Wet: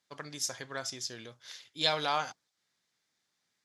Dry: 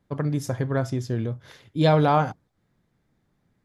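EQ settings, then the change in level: band-pass 5500 Hz, Q 1.3; +8.5 dB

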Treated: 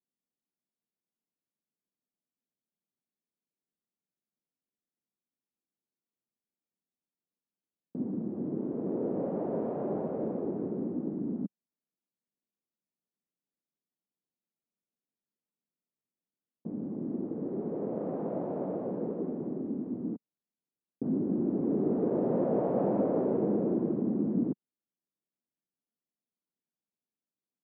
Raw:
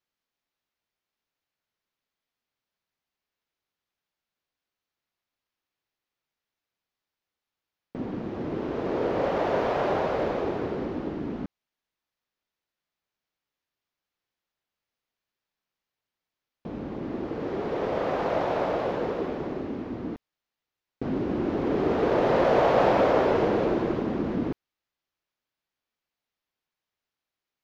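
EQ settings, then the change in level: ladder band-pass 240 Hz, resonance 40%; +8.5 dB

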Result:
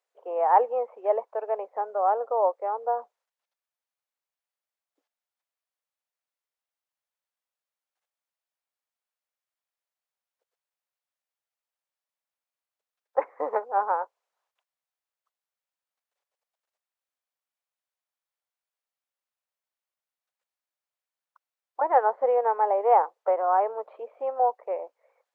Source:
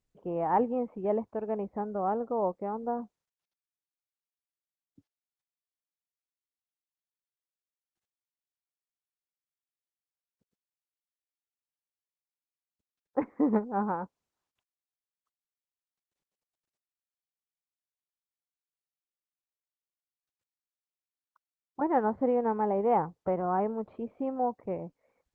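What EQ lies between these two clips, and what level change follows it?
steep high-pass 500 Hz 36 dB/oct; high shelf 2600 Hz -9.5 dB; +8.5 dB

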